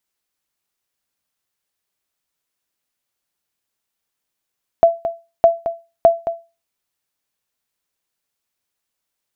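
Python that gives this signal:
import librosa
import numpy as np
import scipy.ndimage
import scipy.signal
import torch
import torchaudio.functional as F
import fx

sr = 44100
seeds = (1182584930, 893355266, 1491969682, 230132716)

y = fx.sonar_ping(sr, hz=672.0, decay_s=0.28, every_s=0.61, pings=3, echo_s=0.22, echo_db=-11.5, level_db=-2.0)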